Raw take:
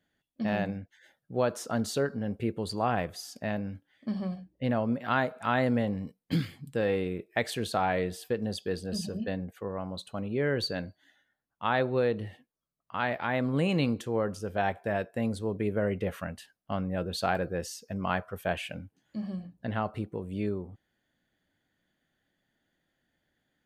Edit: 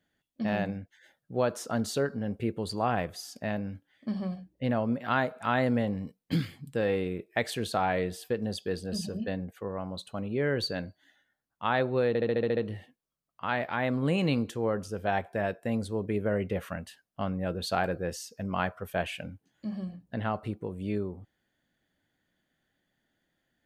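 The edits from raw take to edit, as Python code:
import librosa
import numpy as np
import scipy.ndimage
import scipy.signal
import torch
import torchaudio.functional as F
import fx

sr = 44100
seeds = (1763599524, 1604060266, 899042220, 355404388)

y = fx.edit(x, sr, fx.stutter(start_s=12.08, slice_s=0.07, count=8), tone=tone)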